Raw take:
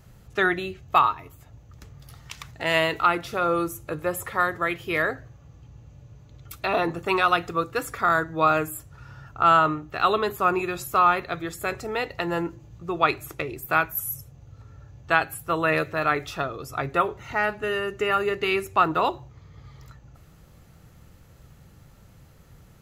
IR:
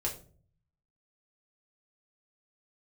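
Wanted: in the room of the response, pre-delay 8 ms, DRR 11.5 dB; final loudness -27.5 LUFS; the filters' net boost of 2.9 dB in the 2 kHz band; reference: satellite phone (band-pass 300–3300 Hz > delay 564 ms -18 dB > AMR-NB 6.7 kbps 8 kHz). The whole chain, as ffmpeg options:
-filter_complex "[0:a]equalizer=f=2000:t=o:g=4.5,asplit=2[s0][s1];[1:a]atrim=start_sample=2205,adelay=8[s2];[s1][s2]afir=irnorm=-1:irlink=0,volume=0.178[s3];[s0][s3]amix=inputs=2:normalize=0,highpass=300,lowpass=3300,aecho=1:1:564:0.126,volume=0.668" -ar 8000 -c:a libopencore_amrnb -b:a 6700

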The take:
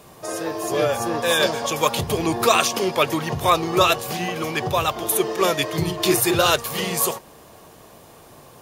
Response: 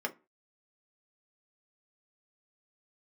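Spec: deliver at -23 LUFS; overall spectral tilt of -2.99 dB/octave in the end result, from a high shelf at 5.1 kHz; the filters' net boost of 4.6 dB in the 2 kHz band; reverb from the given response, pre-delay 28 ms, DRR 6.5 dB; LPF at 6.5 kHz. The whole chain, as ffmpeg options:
-filter_complex "[0:a]lowpass=6500,equalizer=f=2000:t=o:g=5,highshelf=f=5100:g=7,asplit=2[s0][s1];[1:a]atrim=start_sample=2205,adelay=28[s2];[s1][s2]afir=irnorm=-1:irlink=0,volume=0.282[s3];[s0][s3]amix=inputs=2:normalize=0,volume=0.596"

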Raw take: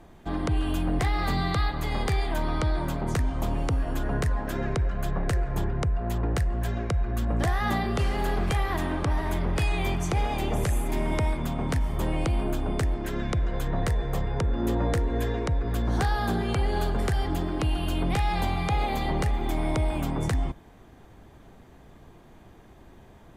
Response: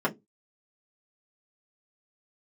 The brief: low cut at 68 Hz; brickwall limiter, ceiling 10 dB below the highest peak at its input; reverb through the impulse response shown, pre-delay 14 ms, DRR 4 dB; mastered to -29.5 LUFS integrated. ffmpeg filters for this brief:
-filter_complex "[0:a]highpass=68,alimiter=limit=0.0631:level=0:latency=1,asplit=2[s0][s1];[1:a]atrim=start_sample=2205,adelay=14[s2];[s1][s2]afir=irnorm=-1:irlink=0,volume=0.168[s3];[s0][s3]amix=inputs=2:normalize=0,volume=1.12"

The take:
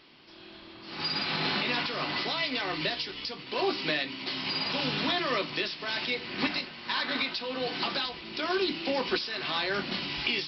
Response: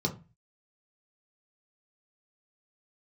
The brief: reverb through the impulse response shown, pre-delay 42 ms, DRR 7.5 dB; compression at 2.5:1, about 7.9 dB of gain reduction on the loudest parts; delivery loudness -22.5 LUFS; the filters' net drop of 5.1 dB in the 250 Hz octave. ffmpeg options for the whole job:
-filter_complex "[0:a]equalizer=f=250:t=o:g=-7,acompressor=threshold=0.0141:ratio=2.5,asplit=2[s0][s1];[1:a]atrim=start_sample=2205,adelay=42[s2];[s1][s2]afir=irnorm=-1:irlink=0,volume=0.211[s3];[s0][s3]amix=inputs=2:normalize=0,volume=4.47"

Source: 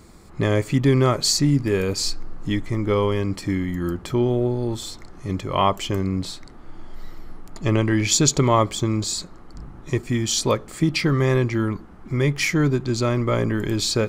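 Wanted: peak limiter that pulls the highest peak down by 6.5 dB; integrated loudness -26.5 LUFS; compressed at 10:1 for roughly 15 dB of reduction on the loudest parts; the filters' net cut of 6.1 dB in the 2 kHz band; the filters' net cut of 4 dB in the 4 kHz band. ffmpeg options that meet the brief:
-af "equalizer=f=2000:t=o:g=-6.5,equalizer=f=4000:t=o:g=-3.5,acompressor=threshold=0.0355:ratio=10,volume=2.99,alimiter=limit=0.158:level=0:latency=1"

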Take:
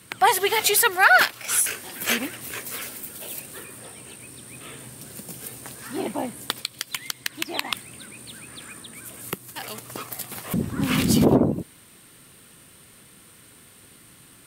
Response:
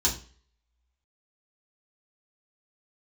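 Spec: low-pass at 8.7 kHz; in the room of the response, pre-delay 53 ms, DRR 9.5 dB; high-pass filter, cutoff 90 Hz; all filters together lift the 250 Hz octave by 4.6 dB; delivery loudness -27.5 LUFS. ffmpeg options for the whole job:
-filter_complex "[0:a]highpass=90,lowpass=8700,equalizer=f=250:t=o:g=5.5,asplit=2[s0][s1];[1:a]atrim=start_sample=2205,adelay=53[s2];[s1][s2]afir=irnorm=-1:irlink=0,volume=0.112[s3];[s0][s3]amix=inputs=2:normalize=0,volume=0.447"

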